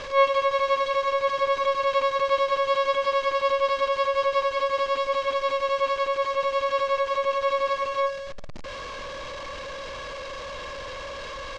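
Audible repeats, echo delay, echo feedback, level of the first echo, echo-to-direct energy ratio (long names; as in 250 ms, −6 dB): 1, 156 ms, repeats not evenly spaced, −24.0 dB, −24.0 dB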